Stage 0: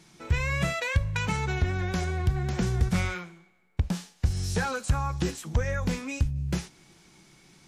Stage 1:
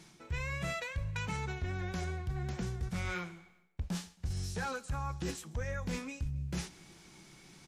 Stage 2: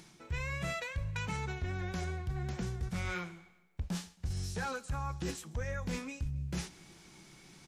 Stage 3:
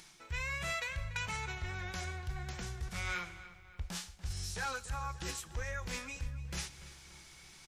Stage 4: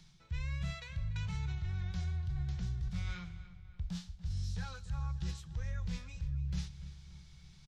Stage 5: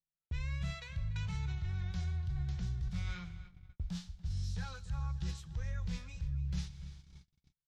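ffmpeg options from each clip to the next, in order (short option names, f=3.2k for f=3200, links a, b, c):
-af "areverse,acompressor=threshold=-34dB:ratio=6,areverse,aecho=1:1:135|270|405:0.0668|0.0307|0.0141"
-af "acompressor=mode=upward:threshold=-57dB:ratio=2.5"
-filter_complex "[0:a]equalizer=f=210:w=0.38:g=-13.5,asplit=2[a][b];[b]adelay=289,lowpass=f=3.8k:p=1,volume=-14.5dB,asplit=2[c][d];[d]adelay=289,lowpass=f=3.8k:p=1,volume=0.51,asplit=2[e][f];[f]adelay=289,lowpass=f=3.8k:p=1,volume=0.51,asplit=2[g][h];[h]adelay=289,lowpass=f=3.8k:p=1,volume=0.51,asplit=2[i][j];[j]adelay=289,lowpass=f=3.8k:p=1,volume=0.51[k];[a][c][e][g][i][k]amix=inputs=6:normalize=0,volume=3.5dB"
-filter_complex "[0:a]firequalizer=gain_entry='entry(170,0);entry(260,-19);entry(2400,-20);entry(3700,-13);entry(9800,-28)':delay=0.05:min_phase=1,acrossover=split=140|850|4300[a][b][c][d];[a]alimiter=level_in=16dB:limit=-24dB:level=0:latency=1,volume=-16dB[e];[e][b][c][d]amix=inputs=4:normalize=0,volume=8dB"
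-af "agate=range=-43dB:threshold=-50dB:ratio=16:detection=peak"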